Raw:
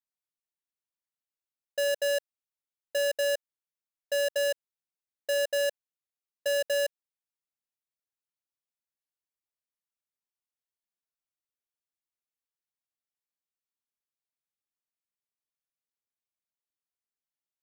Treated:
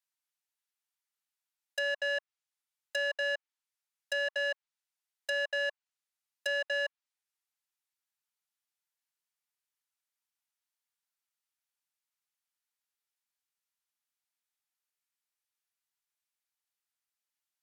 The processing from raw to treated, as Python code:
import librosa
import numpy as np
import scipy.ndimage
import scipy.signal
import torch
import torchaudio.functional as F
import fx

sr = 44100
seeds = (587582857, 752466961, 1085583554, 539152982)

y = fx.env_lowpass_down(x, sr, base_hz=2200.0, full_db=-28.0)
y = scipy.signal.sosfilt(scipy.signal.butter(4, 820.0, 'highpass', fs=sr, output='sos'), y)
y = fx.notch(y, sr, hz=1100.0, q=13.0)
y = F.gain(torch.from_numpy(y), 4.5).numpy()